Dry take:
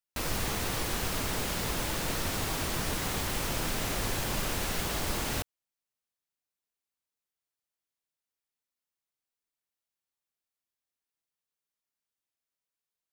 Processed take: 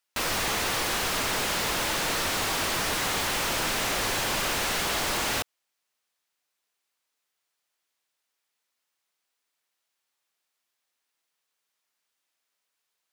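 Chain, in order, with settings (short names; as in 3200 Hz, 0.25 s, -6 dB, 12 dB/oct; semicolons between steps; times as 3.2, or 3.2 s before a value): overdrive pedal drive 19 dB, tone 6100 Hz, clips at -18.5 dBFS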